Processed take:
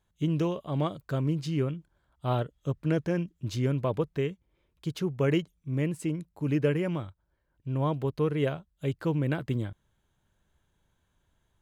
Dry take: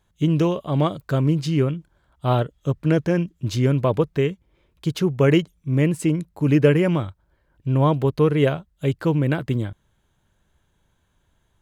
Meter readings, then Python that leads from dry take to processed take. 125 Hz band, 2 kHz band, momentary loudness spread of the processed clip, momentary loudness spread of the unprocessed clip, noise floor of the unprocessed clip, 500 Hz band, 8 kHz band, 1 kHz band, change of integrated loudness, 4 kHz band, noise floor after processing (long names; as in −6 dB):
−9.0 dB, −9.0 dB, 7 LU, 8 LU, −67 dBFS, −9.0 dB, −9.0 dB, −9.0 dB, −9.0 dB, −9.0 dB, −75 dBFS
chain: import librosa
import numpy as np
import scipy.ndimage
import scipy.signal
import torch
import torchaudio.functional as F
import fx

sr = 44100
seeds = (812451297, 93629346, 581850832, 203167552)

y = fx.rider(x, sr, range_db=10, speed_s=2.0)
y = y * 10.0 ** (-9.0 / 20.0)